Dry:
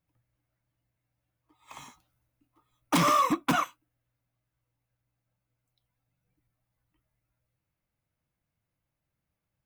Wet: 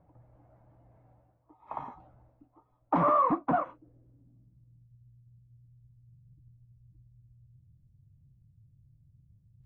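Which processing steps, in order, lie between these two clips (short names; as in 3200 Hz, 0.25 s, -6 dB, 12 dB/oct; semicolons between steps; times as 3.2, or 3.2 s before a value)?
in parallel at -2 dB: compressor, threshold -35 dBFS, peak gain reduction 13.5 dB; on the sum: limiter -21.5 dBFS, peak gain reduction 7.5 dB; low-pass sweep 760 Hz -> 120 Hz, 3.41–4.97; reverse; upward compressor, threshold -46 dBFS; reverse; dynamic EQ 1500 Hz, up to +8 dB, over -47 dBFS, Q 0.91; AAC 32 kbps 24000 Hz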